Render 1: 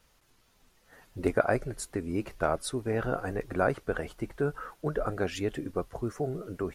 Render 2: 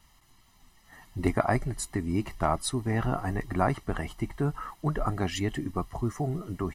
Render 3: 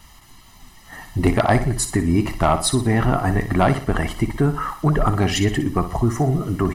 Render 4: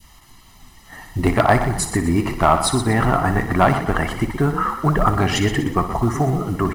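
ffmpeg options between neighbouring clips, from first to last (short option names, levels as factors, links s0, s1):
-af "aecho=1:1:1:0.77,volume=1.26"
-filter_complex "[0:a]asplit=2[s0][s1];[s1]acompressor=threshold=0.02:ratio=6,volume=0.708[s2];[s0][s2]amix=inputs=2:normalize=0,aeval=exprs='0.398*sin(PI/2*1.78*val(0)/0.398)':c=same,aecho=1:1:60|120|180|240:0.282|0.118|0.0497|0.0209"
-filter_complex "[0:a]acrusher=bits=8:mode=log:mix=0:aa=0.000001,asplit=5[s0][s1][s2][s3][s4];[s1]adelay=122,afreqshift=35,volume=0.282[s5];[s2]adelay=244,afreqshift=70,volume=0.11[s6];[s3]adelay=366,afreqshift=105,volume=0.0427[s7];[s4]adelay=488,afreqshift=140,volume=0.0168[s8];[s0][s5][s6][s7][s8]amix=inputs=5:normalize=0,adynamicequalizer=threshold=0.0251:dfrequency=1200:dqfactor=0.81:tfrequency=1200:tqfactor=0.81:attack=5:release=100:ratio=0.375:range=3:mode=boostabove:tftype=bell,volume=0.891"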